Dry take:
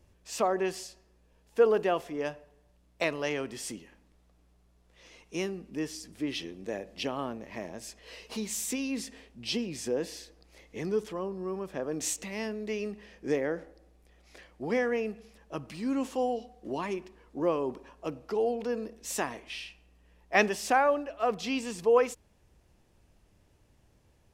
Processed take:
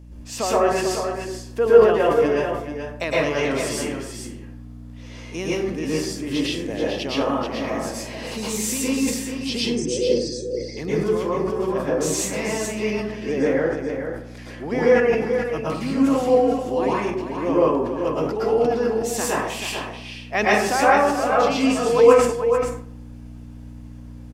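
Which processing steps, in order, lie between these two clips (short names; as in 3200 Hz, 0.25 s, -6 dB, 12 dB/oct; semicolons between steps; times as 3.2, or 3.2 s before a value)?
9.6–10.77 formant sharpening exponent 3; in parallel at +1 dB: compressor, threshold -36 dBFS, peak gain reduction 17.5 dB; on the sum: hum 60 Hz, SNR 12 dB; on a send: echo 0.434 s -7.5 dB; on the sum: plate-style reverb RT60 0.65 s, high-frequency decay 0.5×, pre-delay 0.1 s, DRR -7 dB; sustainer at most 79 dB/s; gain -1 dB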